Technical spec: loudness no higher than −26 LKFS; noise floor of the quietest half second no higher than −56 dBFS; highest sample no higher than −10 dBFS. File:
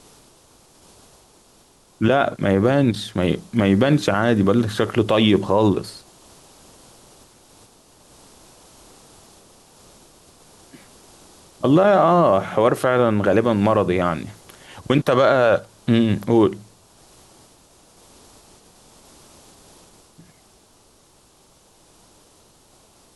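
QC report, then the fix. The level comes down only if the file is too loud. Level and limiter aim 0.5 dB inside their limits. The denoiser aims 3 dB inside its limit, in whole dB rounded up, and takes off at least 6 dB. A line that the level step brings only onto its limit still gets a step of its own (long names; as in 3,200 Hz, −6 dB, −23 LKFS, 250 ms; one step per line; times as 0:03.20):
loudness −18.5 LKFS: out of spec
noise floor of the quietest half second −55 dBFS: out of spec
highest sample −5.5 dBFS: out of spec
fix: level −8 dB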